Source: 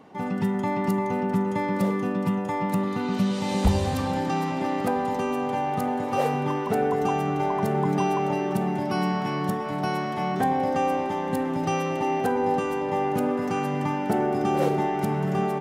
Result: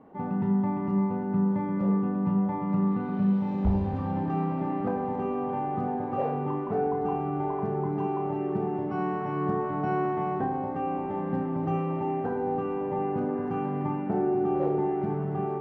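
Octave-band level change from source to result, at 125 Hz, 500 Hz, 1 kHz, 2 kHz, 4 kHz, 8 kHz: -1.5 dB, -3.5 dB, -5.0 dB, -10.5 dB, under -20 dB, under -30 dB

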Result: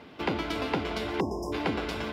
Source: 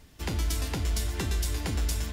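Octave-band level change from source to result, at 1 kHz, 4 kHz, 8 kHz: +9.0, -0.5, -15.5 dB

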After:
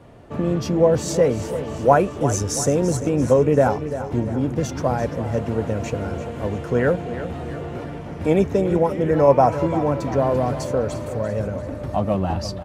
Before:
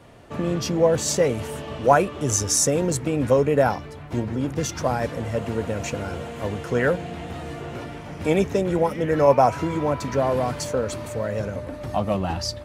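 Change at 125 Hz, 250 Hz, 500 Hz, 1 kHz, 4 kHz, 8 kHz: +3.5, +3.5, +2.5, +1.0, -4.5, -5.0 dB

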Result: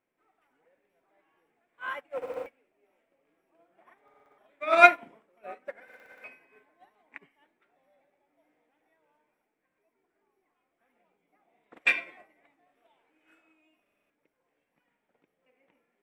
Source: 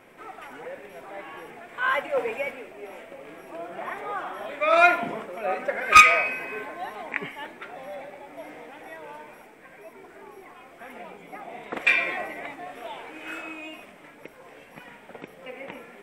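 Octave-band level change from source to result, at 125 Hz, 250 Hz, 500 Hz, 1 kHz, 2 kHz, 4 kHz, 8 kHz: under -15 dB, -7.0 dB, -4.5 dB, -5.5 dB, -7.0 dB, -10.0 dB, under -15 dB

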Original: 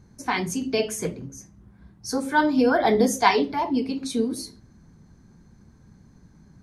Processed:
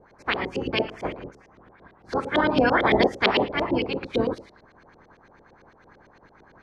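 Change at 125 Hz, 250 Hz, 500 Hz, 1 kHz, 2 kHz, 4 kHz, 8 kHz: +2.0 dB, -3.0 dB, 0.0 dB, -2.0 dB, +2.0 dB, +3.0 dB, under -20 dB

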